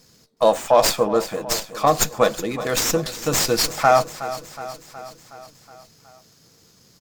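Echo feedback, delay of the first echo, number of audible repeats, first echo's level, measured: 60%, 368 ms, 5, -14.0 dB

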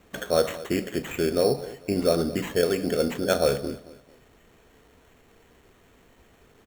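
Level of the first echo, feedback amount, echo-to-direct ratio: -18.0 dB, 33%, -17.5 dB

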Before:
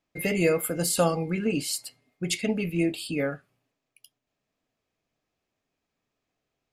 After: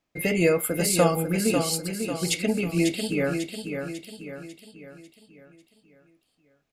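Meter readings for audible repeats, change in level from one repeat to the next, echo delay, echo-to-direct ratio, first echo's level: 5, -6.5 dB, 546 ms, -5.5 dB, -6.5 dB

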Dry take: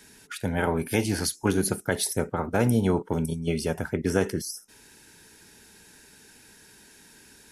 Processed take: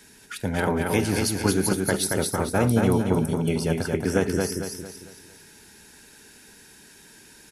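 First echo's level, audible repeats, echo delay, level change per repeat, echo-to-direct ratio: -3.5 dB, 5, 226 ms, -7.5 dB, -2.5 dB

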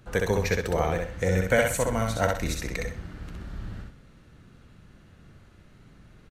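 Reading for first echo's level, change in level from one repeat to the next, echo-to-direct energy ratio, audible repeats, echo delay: -3.0 dB, -11.0 dB, -2.5 dB, 3, 64 ms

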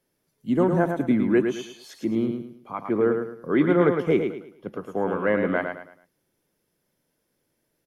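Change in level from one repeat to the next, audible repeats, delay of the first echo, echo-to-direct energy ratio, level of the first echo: -9.5 dB, 4, 108 ms, -5.5 dB, -6.0 dB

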